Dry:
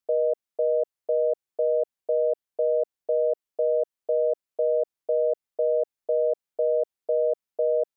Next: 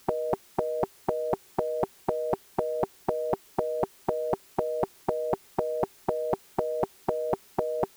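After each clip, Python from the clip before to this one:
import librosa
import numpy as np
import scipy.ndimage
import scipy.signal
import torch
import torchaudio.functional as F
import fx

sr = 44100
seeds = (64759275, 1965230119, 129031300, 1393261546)

y = fx.peak_eq(x, sr, hz=390.0, db=9.5, octaves=0.29)
y = fx.spectral_comp(y, sr, ratio=10.0)
y = y * 10.0 ** (3.5 / 20.0)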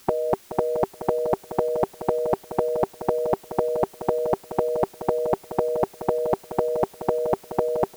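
y = fx.echo_feedback(x, sr, ms=425, feedback_pct=21, wet_db=-12.0)
y = y * 10.0 ** (5.0 / 20.0)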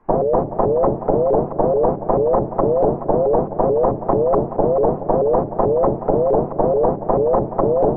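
y = scipy.ndimage.gaussian_filter1d(x, 6.4, mode='constant')
y = fx.room_shoebox(y, sr, seeds[0], volume_m3=230.0, walls='furnished', distance_m=5.7)
y = fx.vibrato_shape(y, sr, shape='saw_up', rate_hz=4.6, depth_cents=250.0)
y = y * 10.0 ** (-1.5 / 20.0)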